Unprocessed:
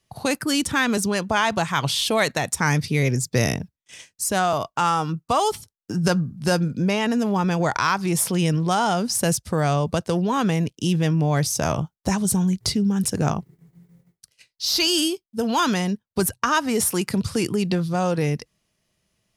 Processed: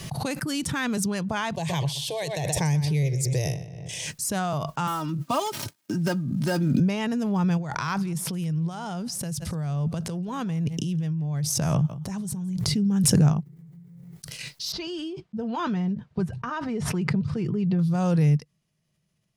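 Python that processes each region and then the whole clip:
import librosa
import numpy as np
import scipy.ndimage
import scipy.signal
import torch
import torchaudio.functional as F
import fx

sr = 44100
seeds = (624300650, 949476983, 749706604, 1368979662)

y = fx.chain(x, sr, fx.fixed_phaser(hz=550.0, stages=4),
    fx.echo_filtered(ms=124, feedback_pct=27, hz=4800.0, wet_db=-11.5), at=(1.53, 4.07))
y = fx.chain(y, sr, fx.dead_time(dead_ms=0.061),
    fx.highpass(hz=120.0, slope=24),
    fx.comb(ms=3.2, depth=0.73), at=(4.87, 6.8))
y = fx.chain(y, sr, fx.over_compress(threshold_db=-29.0, ratio=-1.0),
    fx.echo_single(ms=169, db=-23.0), at=(7.57, 12.66))
y = fx.chain(y, sr, fx.spacing_loss(db_at_10k=28),
    fx.notch_comb(f0_hz=280.0), at=(14.72, 17.79))
y = fx.peak_eq(y, sr, hz=150.0, db=14.0, octaves=0.68)
y = fx.pre_swell(y, sr, db_per_s=21.0)
y = y * librosa.db_to_amplitude(-8.5)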